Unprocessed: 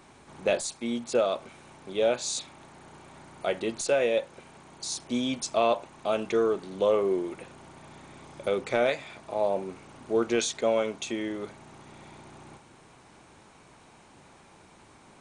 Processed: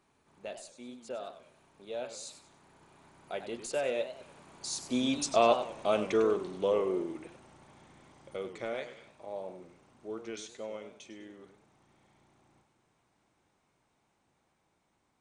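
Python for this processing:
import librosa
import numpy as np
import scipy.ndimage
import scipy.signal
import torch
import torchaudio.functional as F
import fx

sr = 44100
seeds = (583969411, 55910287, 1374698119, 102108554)

y = fx.doppler_pass(x, sr, speed_mps=14, closest_m=11.0, pass_at_s=5.54)
y = fx.echo_warbled(y, sr, ms=98, feedback_pct=36, rate_hz=2.8, cents=168, wet_db=-11)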